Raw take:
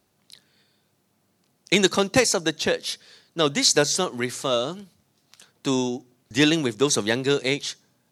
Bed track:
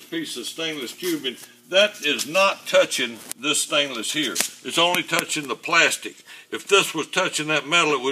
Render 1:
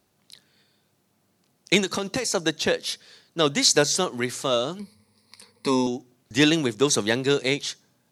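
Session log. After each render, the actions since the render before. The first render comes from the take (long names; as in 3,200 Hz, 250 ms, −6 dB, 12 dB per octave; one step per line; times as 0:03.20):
0:01.79–0:02.35: downward compressor 10 to 1, threshold −21 dBFS
0:04.79–0:05.87: EQ curve with evenly spaced ripples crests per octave 0.91, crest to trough 16 dB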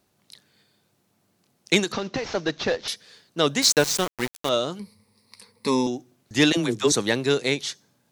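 0:01.92–0:02.88: variable-slope delta modulation 32 kbit/s
0:03.62–0:04.49: centre clipping without the shift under −24 dBFS
0:06.52–0:06.92: all-pass dispersion lows, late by 53 ms, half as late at 450 Hz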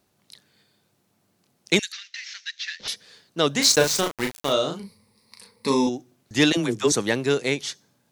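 0:01.79–0:02.80: Chebyshev high-pass filter 1,800 Hz, order 4
0:03.51–0:05.89: double-tracking delay 36 ms −5 dB
0:06.57–0:07.68: parametric band 3,900 Hz −6 dB 0.25 octaves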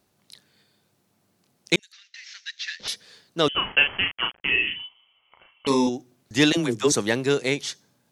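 0:01.76–0:02.69: fade in
0:03.48–0:05.67: voice inversion scrambler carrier 3,200 Hz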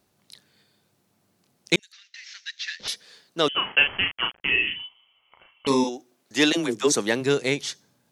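0:02.90–0:03.80: high-pass filter 240 Hz 6 dB per octave
0:05.83–0:07.20: high-pass filter 400 Hz → 160 Hz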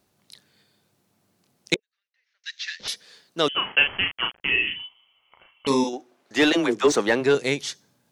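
0:01.74–0:02.44: resonant band-pass 470 Hz, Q 5.8
0:05.93–0:07.35: mid-hump overdrive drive 16 dB, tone 1,300 Hz, clips at −4.5 dBFS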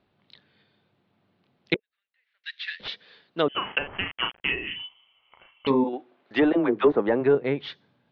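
treble cut that deepens with the level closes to 940 Hz, closed at −17 dBFS
Butterworth low-pass 3,800 Hz 36 dB per octave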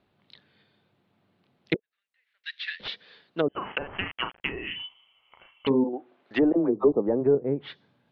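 0:06.73–0:07.03: gain on a spectral selection 1,300–3,600 Hz −26 dB
treble cut that deepens with the level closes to 560 Hz, closed at −20.5 dBFS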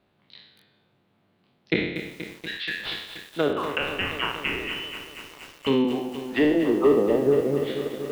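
peak hold with a decay on every bin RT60 0.79 s
feedback echo at a low word length 239 ms, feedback 80%, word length 7 bits, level −10 dB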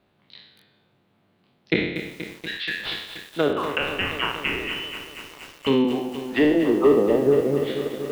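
level +2 dB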